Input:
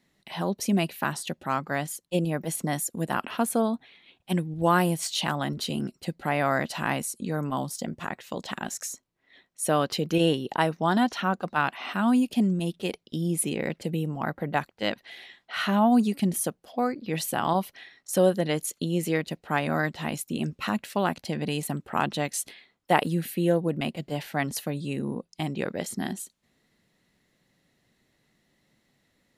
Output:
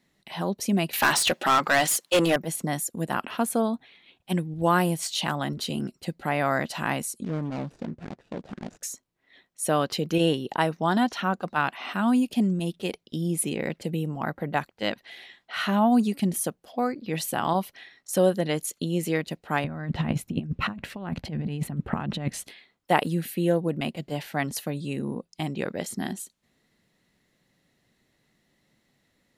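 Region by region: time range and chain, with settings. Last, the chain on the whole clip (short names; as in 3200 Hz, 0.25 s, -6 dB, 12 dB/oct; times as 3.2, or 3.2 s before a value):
0.93–2.36 HPF 280 Hz 6 dB/oct + overdrive pedal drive 26 dB, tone 6500 Hz, clips at -11 dBFS
7.24–8.83 median filter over 41 samples + LPF 7400 Hz + Doppler distortion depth 0.26 ms
19.64–22.44 tone controls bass +12 dB, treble -14 dB + negative-ratio compressor -27 dBFS, ratio -0.5
whole clip: dry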